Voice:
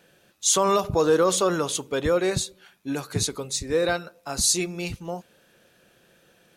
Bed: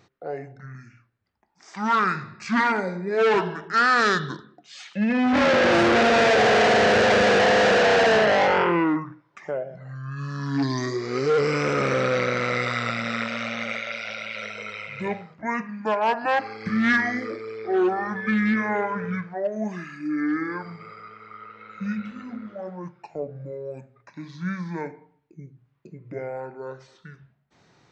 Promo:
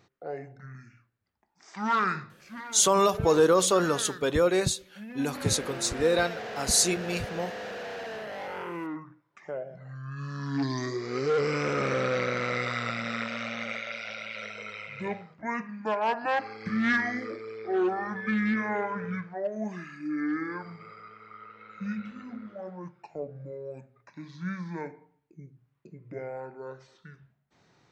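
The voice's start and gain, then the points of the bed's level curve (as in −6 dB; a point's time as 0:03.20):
2.30 s, −1.0 dB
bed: 0:02.18 −4.5 dB
0:02.50 −20 dB
0:08.27 −20 dB
0:09.72 −5 dB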